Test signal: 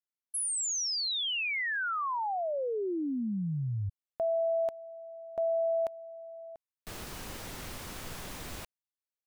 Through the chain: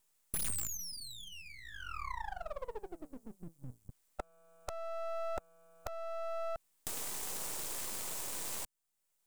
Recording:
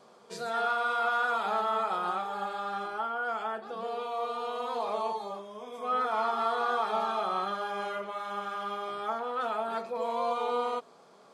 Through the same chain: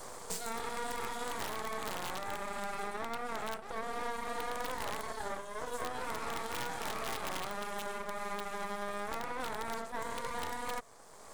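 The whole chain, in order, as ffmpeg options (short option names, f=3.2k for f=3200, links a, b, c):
-filter_complex "[0:a]afftfilt=real='re*lt(hypot(re,im),0.158)':imag='im*lt(hypot(re,im),0.158)':win_size=1024:overlap=0.75,acrossover=split=400|3200[a][b][c];[a]acompressor=threshold=-50dB:ratio=2:attack=22:release=173:knee=2.83:detection=peak[d];[d][b][c]amix=inputs=3:normalize=0,aemphasis=mode=production:type=75kf,aeval=exprs='0.119*(cos(1*acos(clip(val(0)/0.119,-1,1)))-cos(1*PI/2))+0.0119*(cos(3*acos(clip(val(0)/0.119,-1,1)))-cos(3*PI/2))+0.0015*(cos(4*acos(clip(val(0)/0.119,-1,1)))-cos(4*PI/2))+0.00168*(cos(7*acos(clip(val(0)/0.119,-1,1)))-cos(7*PI/2))+0.00531*(cos(8*acos(clip(val(0)/0.119,-1,1)))-cos(8*PI/2))':c=same,equalizer=f=125:t=o:w=1:g=4,equalizer=f=500:t=o:w=1:g=6,equalizer=f=1k:t=o:w=1:g=11,equalizer=f=2k:t=o:w=1:g=-5,equalizer=f=8k:t=o:w=1:g=11,acrossover=split=310[e][f];[f]aeval=exprs='(mod(10.6*val(0)+1,2)-1)/10.6':c=same[g];[e][g]amix=inputs=2:normalize=0,acompressor=threshold=-37dB:ratio=12:attack=3.3:release=938:knee=6:detection=rms,aeval=exprs='max(val(0),0)':c=same,volume=9.5dB"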